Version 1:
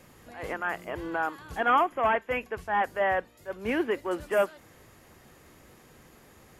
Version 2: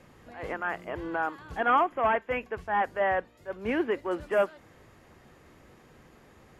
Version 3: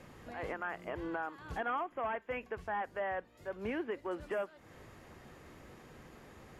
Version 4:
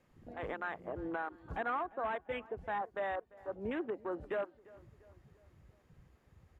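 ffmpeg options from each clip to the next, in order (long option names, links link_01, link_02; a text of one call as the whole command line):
ffmpeg -i in.wav -af "aemphasis=mode=reproduction:type=50kf" out.wav
ffmpeg -i in.wav -af "acompressor=threshold=-39dB:ratio=3,volume=1dB" out.wav
ffmpeg -i in.wav -filter_complex "[0:a]afwtdn=0.00891,asplit=2[link_01][link_02];[link_02]adelay=345,lowpass=frequency=2300:poles=1,volume=-21dB,asplit=2[link_03][link_04];[link_04]adelay=345,lowpass=frequency=2300:poles=1,volume=0.53,asplit=2[link_05][link_06];[link_06]adelay=345,lowpass=frequency=2300:poles=1,volume=0.53,asplit=2[link_07][link_08];[link_08]adelay=345,lowpass=frequency=2300:poles=1,volume=0.53[link_09];[link_01][link_03][link_05][link_07][link_09]amix=inputs=5:normalize=0" out.wav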